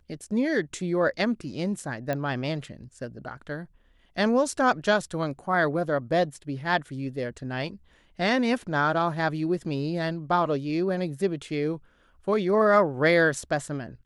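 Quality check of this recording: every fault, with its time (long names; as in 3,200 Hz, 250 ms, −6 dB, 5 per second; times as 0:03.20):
0:02.13: click −16 dBFS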